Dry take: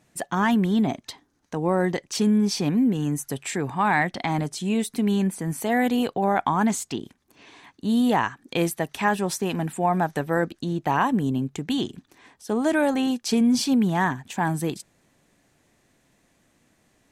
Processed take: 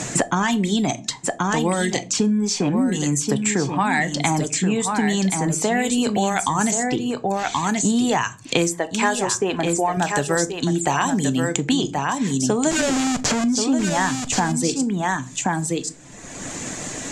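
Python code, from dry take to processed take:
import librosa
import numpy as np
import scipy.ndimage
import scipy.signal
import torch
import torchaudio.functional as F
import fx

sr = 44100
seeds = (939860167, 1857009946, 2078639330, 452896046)

p1 = fx.low_shelf_res(x, sr, hz=270.0, db=-8.0, q=1.5, at=(8.7, 9.97))
p2 = fx.rider(p1, sr, range_db=10, speed_s=0.5)
p3 = p1 + (p2 * 10.0 ** (0.0 / 20.0))
p4 = fx.dereverb_blind(p3, sr, rt60_s=0.7)
p5 = fx.schmitt(p4, sr, flips_db=-29.0, at=(12.71, 13.44))
p6 = fx.lowpass_res(p5, sr, hz=7200.0, q=5.4)
p7 = p6 + fx.echo_single(p6, sr, ms=1079, db=-7.5, dry=0)
p8 = fx.room_shoebox(p7, sr, seeds[0], volume_m3=140.0, walls='furnished', distance_m=0.4)
p9 = fx.band_squash(p8, sr, depth_pct=100)
y = p9 * 10.0 ** (-4.0 / 20.0)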